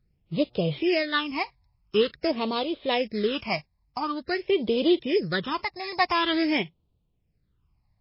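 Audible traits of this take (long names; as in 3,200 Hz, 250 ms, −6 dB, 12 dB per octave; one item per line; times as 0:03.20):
a buzz of ramps at a fixed pitch in blocks of 8 samples
phaser sweep stages 8, 0.47 Hz, lowest notch 410–1,800 Hz
tremolo triangle 0.67 Hz, depth 50%
MP3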